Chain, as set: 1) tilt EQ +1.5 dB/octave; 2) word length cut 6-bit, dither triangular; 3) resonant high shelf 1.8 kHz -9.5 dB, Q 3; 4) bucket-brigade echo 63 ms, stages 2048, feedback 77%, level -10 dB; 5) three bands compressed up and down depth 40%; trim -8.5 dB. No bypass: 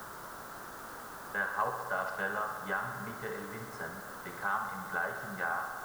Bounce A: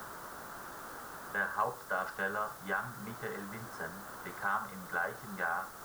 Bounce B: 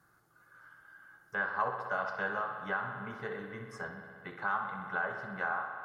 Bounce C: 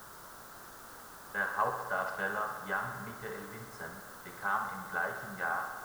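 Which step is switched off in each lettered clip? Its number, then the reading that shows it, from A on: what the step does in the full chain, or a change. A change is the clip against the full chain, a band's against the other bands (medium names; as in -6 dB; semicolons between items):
4, loudness change -1.0 LU; 2, distortion -4 dB; 5, momentary loudness spread change +5 LU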